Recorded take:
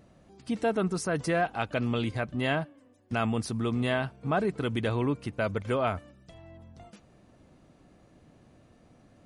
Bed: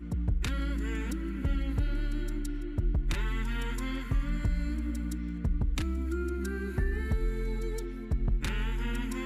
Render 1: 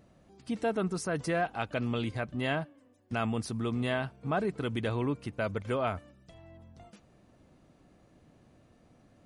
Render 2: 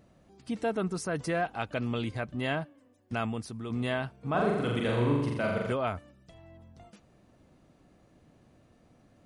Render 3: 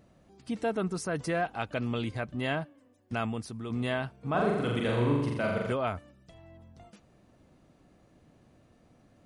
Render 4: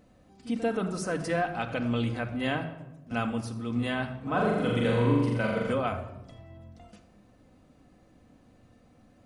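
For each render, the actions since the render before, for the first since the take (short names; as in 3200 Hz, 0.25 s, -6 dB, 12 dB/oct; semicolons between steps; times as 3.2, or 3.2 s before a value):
gain -3 dB
3.19–3.7 fade out quadratic, to -6 dB; 4.3–5.73 flutter echo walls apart 7.2 m, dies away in 1.1 s
nothing audible
pre-echo 44 ms -16 dB; shoebox room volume 3900 m³, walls furnished, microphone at 2 m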